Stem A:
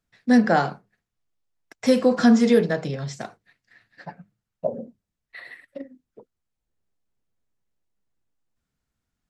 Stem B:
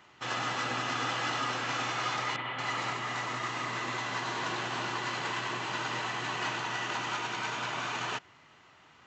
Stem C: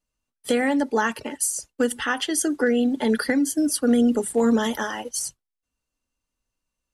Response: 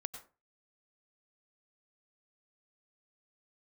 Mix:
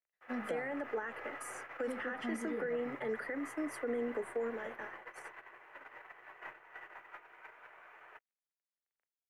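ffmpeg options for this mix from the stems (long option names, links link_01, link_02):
-filter_complex "[0:a]volume=-14dB[link_01];[1:a]lowpass=frequency=1500:poles=1,aeval=exprs='0.0841*(cos(1*acos(clip(val(0)/0.0841,-1,1)))-cos(1*PI/2))+0.00668*(cos(4*acos(clip(val(0)/0.0841,-1,1)))-cos(4*PI/2))+0.0106*(cos(6*acos(clip(val(0)/0.0841,-1,1)))-cos(6*PI/2))':channel_layout=same,acrusher=bits=7:mix=0:aa=0.5,volume=-1.5dB[link_02];[2:a]adynamicequalizer=threshold=0.0126:dfrequency=2100:dqfactor=0.7:tfrequency=2100:tqfactor=0.7:attack=5:release=100:ratio=0.375:range=3:mode=cutabove:tftype=highshelf,volume=-0.5dB,afade=type=out:start_time=4.35:duration=0.23:silence=0.375837[link_03];[link_02][link_03]amix=inputs=2:normalize=0,equalizer=frequency=125:width_type=o:width=1:gain=-5,equalizer=frequency=250:width_type=o:width=1:gain=-11,equalizer=frequency=500:width_type=o:width=1:gain=4,equalizer=frequency=1000:width_type=o:width=1:gain=-4,equalizer=frequency=2000:width_type=o:width=1:gain=10,equalizer=frequency=4000:width_type=o:width=1:gain=-7,alimiter=limit=-17dB:level=0:latency=1:release=30,volume=0dB[link_04];[link_01][link_04]amix=inputs=2:normalize=0,agate=range=-18dB:threshold=-33dB:ratio=16:detection=peak,acrossover=split=320 2300:gain=0.158 1 0.224[link_05][link_06][link_07];[link_05][link_06][link_07]amix=inputs=3:normalize=0,acrossover=split=310[link_08][link_09];[link_09]acompressor=threshold=-50dB:ratio=2[link_10];[link_08][link_10]amix=inputs=2:normalize=0"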